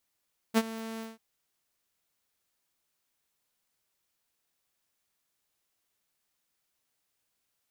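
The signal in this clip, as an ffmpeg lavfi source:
-f lavfi -i "aevalsrc='0.15*(2*mod(224*t,1)-1)':d=0.639:s=44100,afade=t=in:d=0.035,afade=t=out:st=0.035:d=0.043:silence=0.133,afade=t=out:st=0.46:d=0.179"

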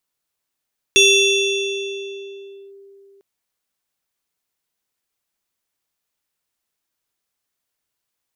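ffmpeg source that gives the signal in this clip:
-f lavfi -i "aevalsrc='0.422*pow(10,-3*t/3.3)*sin(2*PI*395*t+1.7*clip(1-t/1.76,0,1)*sin(2*PI*7.79*395*t))':d=2.25:s=44100"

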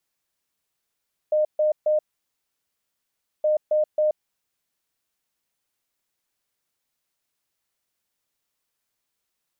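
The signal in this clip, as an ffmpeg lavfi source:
-f lavfi -i "aevalsrc='0.141*sin(2*PI*611*t)*clip(min(mod(mod(t,2.12),0.27),0.13-mod(mod(t,2.12),0.27))/0.005,0,1)*lt(mod(t,2.12),0.81)':d=4.24:s=44100"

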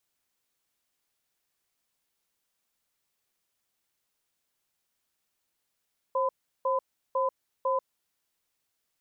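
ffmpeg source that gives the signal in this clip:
-f lavfi -i "aevalsrc='0.0473*(sin(2*PI*532*t)+sin(2*PI*1010*t))*clip(min(mod(t,0.5),0.14-mod(t,0.5))/0.005,0,1)':d=1.92:s=44100"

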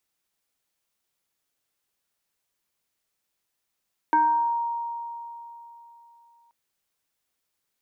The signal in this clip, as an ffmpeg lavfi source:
-f lavfi -i "aevalsrc='0.168*pow(10,-3*t/3.34)*sin(2*PI*936*t+0.57*pow(10,-3*t/0.77)*sin(2*PI*0.67*936*t))':d=2.38:s=44100"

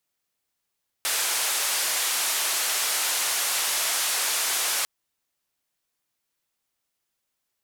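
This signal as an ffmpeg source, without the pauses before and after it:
-f lavfi -i "anoisesrc=c=white:d=3.8:r=44100:seed=1,highpass=f=640,lowpass=f=12000,volume=-17.8dB"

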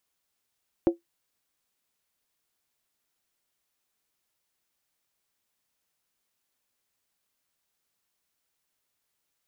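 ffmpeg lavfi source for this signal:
-f lavfi -i "aevalsrc='0.224*pow(10,-3*t/0.14)*sin(2*PI*340*t)+0.075*pow(10,-3*t/0.111)*sin(2*PI*542*t)+0.0251*pow(10,-3*t/0.096)*sin(2*PI*726.2*t)+0.00841*pow(10,-3*t/0.092)*sin(2*PI*780.6*t)+0.00282*pow(10,-3*t/0.086)*sin(2*PI*902*t)':d=0.63:s=44100"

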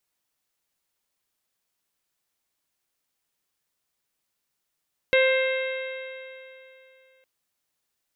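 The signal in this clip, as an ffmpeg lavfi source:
-f lavfi -i "aevalsrc='0.141*pow(10,-3*t/2.87)*sin(2*PI*522.39*t)+0.0158*pow(10,-3*t/2.87)*sin(2*PI*1047.13*t)+0.0531*pow(10,-3*t/2.87)*sin(2*PI*1576.54*t)+0.0841*pow(10,-3*t/2.87)*sin(2*PI*2112.91*t)+0.0447*pow(10,-3*t/2.87)*sin(2*PI*2658.49*t)+0.02*pow(10,-3*t/2.87)*sin(2*PI*3215.45*t)+0.0282*pow(10,-3*t/2.87)*sin(2*PI*3785.9*t)':d=2.11:s=44100"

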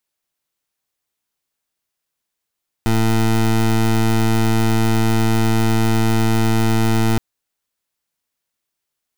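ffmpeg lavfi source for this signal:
-f lavfi -i "aevalsrc='0.178*(2*lt(mod(112*t,1),0.2)-1)':d=4.32:s=44100"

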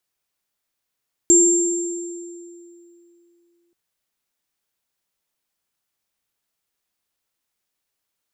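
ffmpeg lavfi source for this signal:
-f lavfi -i "aevalsrc='0.224*pow(10,-3*t/2.83)*sin(2*PI*344*t)+0.335*pow(10,-3*t/1.8)*sin(2*PI*7380*t)':d=2.43:s=44100"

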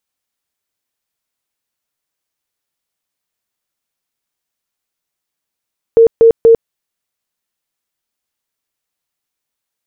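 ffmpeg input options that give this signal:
-f lavfi -i "aevalsrc='0.75*sin(2*PI*457*mod(t,0.24))*lt(mod(t,0.24),45/457)':d=0.72:s=44100"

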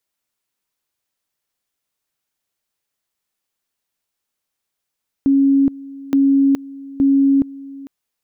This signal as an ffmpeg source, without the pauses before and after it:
-f lavfi -i "aevalsrc='pow(10,(-10-20.5*gte(mod(t,0.87),0.42))/20)*sin(2*PI*275*t)':d=2.61:s=44100"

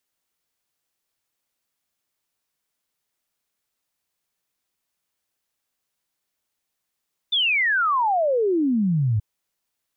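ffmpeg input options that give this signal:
-f lavfi -i "aevalsrc='0.133*clip(min(t,1.88-t)/0.01,0,1)*sin(2*PI*3600*1.88/log(100/3600)*(exp(log(100/3600)*t/1.88)-1))':d=1.88:s=44100"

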